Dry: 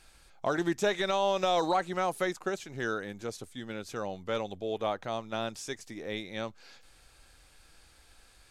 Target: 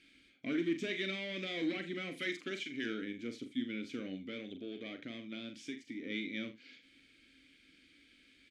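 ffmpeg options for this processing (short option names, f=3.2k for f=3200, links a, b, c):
-filter_complex "[0:a]asettb=1/sr,asplit=3[a][b][c];[a]atrim=end=2.174[d];[b]atrim=start=2.17:end=2.86,asetpts=PTS-STARTPTS,afade=t=in:d=0.004:c=qsin,afade=t=out:st=0.686:d=0.004:c=qsin,tiltshelf=f=650:g=-5.5[e];[c]atrim=start=2.856[f];[d][e]acrossfade=d=0.004:c1=hsin:c2=qsin[g];[g][f]acrossfade=d=0.004:c1=qsin:c2=hsin,asoftclip=type=tanh:threshold=-27dB,asplit=3[h][i][j];[h]bandpass=f=270:t=q:w=8,volume=0dB[k];[i]bandpass=f=2.29k:t=q:w=8,volume=-6dB[l];[j]bandpass=f=3.01k:t=q:w=8,volume=-9dB[m];[k][l][m]amix=inputs=3:normalize=0,asettb=1/sr,asplit=3[n][o][p];[n]atrim=end=4.184[q];[o]atrim=start=4.18:end=6.03,asetpts=PTS-STARTPTS,afade=t=in:d=0.004:c=qsin,afade=t=out:st=1.846:d=0.004:c=qsin,acompressor=threshold=-53dB:ratio=2.5[r];[p]atrim=start=6.026[s];[q][r]acrossfade=d=0.004:c1=hsin:c2=qsin[t];[t][s]acrossfade=d=0.004:c1=qsin:c2=hsin,aecho=1:1:42|79:0.398|0.15,volume=11.5dB"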